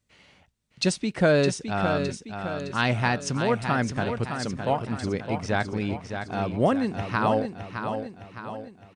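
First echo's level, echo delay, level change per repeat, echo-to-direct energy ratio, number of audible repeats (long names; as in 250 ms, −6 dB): −7.5 dB, 612 ms, −6.0 dB, −6.5 dB, 5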